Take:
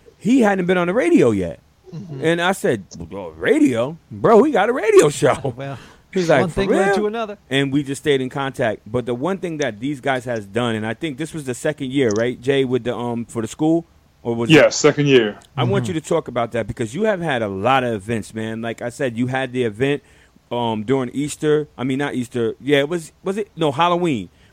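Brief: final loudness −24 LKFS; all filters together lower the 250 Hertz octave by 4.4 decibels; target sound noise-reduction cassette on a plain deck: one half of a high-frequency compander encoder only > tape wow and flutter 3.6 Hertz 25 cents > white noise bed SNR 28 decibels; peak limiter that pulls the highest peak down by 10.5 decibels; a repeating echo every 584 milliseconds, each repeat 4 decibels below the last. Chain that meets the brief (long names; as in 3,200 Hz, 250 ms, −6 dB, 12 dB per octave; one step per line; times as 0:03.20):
parametric band 250 Hz −6 dB
brickwall limiter −11.5 dBFS
repeating echo 584 ms, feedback 63%, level −4 dB
one half of a high-frequency compander encoder only
tape wow and flutter 3.6 Hz 25 cents
white noise bed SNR 28 dB
level −2.5 dB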